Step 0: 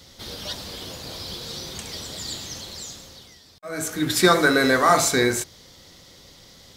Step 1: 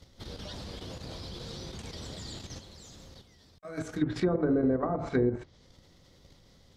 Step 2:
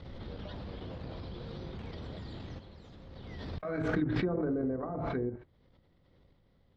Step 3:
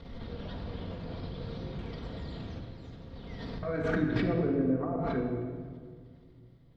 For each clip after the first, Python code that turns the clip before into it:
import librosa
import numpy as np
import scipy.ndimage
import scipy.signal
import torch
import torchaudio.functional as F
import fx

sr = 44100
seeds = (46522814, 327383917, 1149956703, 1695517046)

y1 = fx.tilt_eq(x, sr, slope=-2.0)
y1 = fx.level_steps(y1, sr, step_db=9)
y1 = fx.env_lowpass_down(y1, sr, base_hz=510.0, full_db=-15.5)
y1 = y1 * librosa.db_to_amplitude(-5.0)
y2 = fx.rider(y1, sr, range_db=4, speed_s=2.0)
y2 = fx.air_absorb(y2, sr, metres=390.0)
y2 = fx.pre_swell(y2, sr, db_per_s=23.0)
y2 = y2 * librosa.db_to_amplitude(-4.0)
y3 = fx.room_shoebox(y2, sr, seeds[0], volume_m3=3000.0, walls='mixed', distance_m=1.7)